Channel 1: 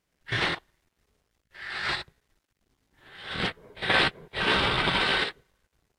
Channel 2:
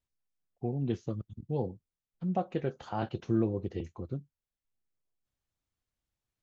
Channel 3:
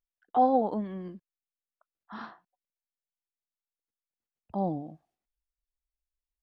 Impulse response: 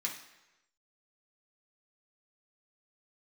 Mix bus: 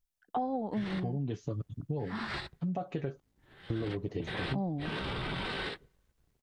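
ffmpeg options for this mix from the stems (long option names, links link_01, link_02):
-filter_complex "[0:a]lowshelf=frequency=460:gain=10.5,alimiter=limit=-17dB:level=0:latency=1:release=12,adelay=450,volume=-10dB[link_01];[1:a]aecho=1:1:7:0.58,alimiter=limit=-22.5dB:level=0:latency=1:release=35,adelay=400,volume=3dB,asplit=3[link_02][link_03][link_04];[link_02]atrim=end=3.2,asetpts=PTS-STARTPTS,afade=type=out:start_time=3.196:duration=0.004:curve=hsin[link_05];[link_03]atrim=start=3.2:end=3.7,asetpts=PTS-STARTPTS,volume=0[link_06];[link_04]atrim=start=3.7,asetpts=PTS-STARTPTS,afade=type=in:duration=0.004:curve=hsin[link_07];[link_05][link_06][link_07]concat=n=3:v=0:a=1[link_08];[2:a]bass=frequency=250:gain=10,treble=frequency=4000:gain=5,volume=1dB[link_09];[link_01][link_08][link_09]amix=inputs=3:normalize=0,acompressor=threshold=-30dB:ratio=10"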